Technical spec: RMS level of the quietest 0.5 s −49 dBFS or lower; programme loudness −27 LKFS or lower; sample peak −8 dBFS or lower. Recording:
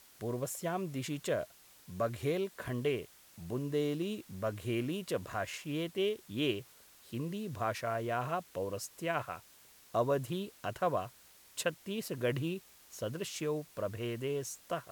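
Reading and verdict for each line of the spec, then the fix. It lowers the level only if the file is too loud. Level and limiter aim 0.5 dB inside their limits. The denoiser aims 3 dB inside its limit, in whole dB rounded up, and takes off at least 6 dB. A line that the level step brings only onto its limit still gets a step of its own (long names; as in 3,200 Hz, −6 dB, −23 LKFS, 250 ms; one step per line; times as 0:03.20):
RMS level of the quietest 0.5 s −60 dBFS: in spec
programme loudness −36.5 LKFS: in spec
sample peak −19.0 dBFS: in spec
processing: no processing needed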